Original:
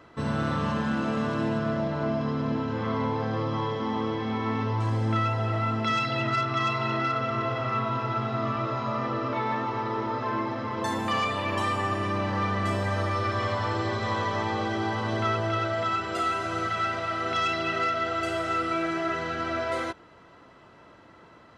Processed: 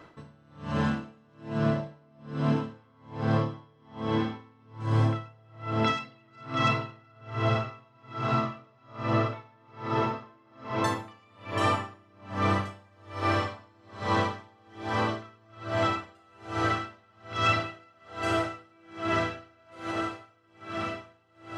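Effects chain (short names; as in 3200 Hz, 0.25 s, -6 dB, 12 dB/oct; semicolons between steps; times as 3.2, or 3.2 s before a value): diffused feedback echo 1.793 s, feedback 71%, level -7.5 dB; shoebox room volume 660 m³, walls furnished, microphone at 0.54 m; dB-linear tremolo 1.2 Hz, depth 36 dB; gain +2 dB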